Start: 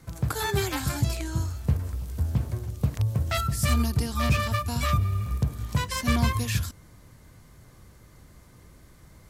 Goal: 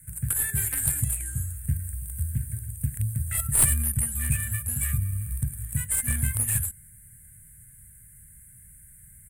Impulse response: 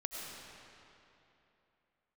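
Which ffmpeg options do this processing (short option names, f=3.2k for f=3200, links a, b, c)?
-af "aexciter=amount=2.4:drive=7.9:freq=7.4k,firequalizer=gain_entry='entry(140,0);entry(330,-22);entry(710,-24);entry(1100,-28);entry(1600,1);entry(4900,-27);entry(8800,12);entry(13000,2)':delay=0.05:min_phase=1,aeval=exprs='0.708*(cos(1*acos(clip(val(0)/0.708,-1,1)))-cos(1*PI/2))+0.251*(cos(2*acos(clip(val(0)/0.708,-1,1)))-cos(2*PI/2))':c=same,volume=-2.5dB"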